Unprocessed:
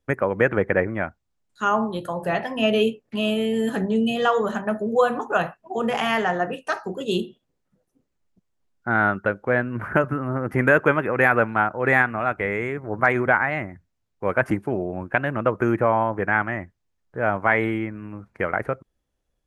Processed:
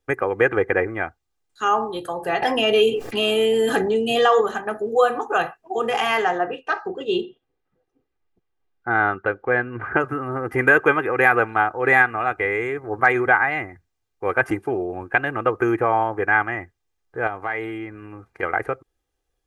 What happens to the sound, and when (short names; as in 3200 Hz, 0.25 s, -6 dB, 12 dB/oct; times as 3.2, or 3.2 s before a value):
2.42–4.41 fast leveller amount 70%
6.38–10 LPF 3100 Hz
17.27–18.43 compressor 2:1, threshold -30 dBFS
whole clip: low shelf 290 Hz -6.5 dB; comb 2.5 ms, depth 61%; gain +1.5 dB